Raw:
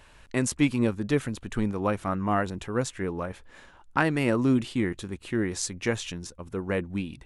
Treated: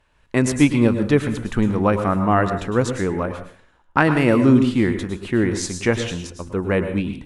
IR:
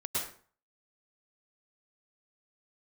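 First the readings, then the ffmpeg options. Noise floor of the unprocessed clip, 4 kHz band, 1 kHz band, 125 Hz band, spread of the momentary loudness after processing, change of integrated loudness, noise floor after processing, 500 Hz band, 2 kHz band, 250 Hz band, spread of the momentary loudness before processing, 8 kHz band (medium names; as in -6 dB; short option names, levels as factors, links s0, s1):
-54 dBFS, +5.5 dB, +8.5 dB, +9.0 dB, 11 LU, +8.5 dB, -58 dBFS, +9.0 dB, +7.5 dB, +9.0 dB, 11 LU, +3.5 dB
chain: -filter_complex "[0:a]aemphasis=mode=reproduction:type=cd,agate=range=0.2:threshold=0.00447:ratio=16:detection=peak,asplit=2[s0][s1];[1:a]atrim=start_sample=2205,highshelf=f=6100:g=9[s2];[s1][s2]afir=irnorm=-1:irlink=0,volume=0.251[s3];[s0][s3]amix=inputs=2:normalize=0,dynaudnorm=f=110:g=3:m=1.41,volume=1.5"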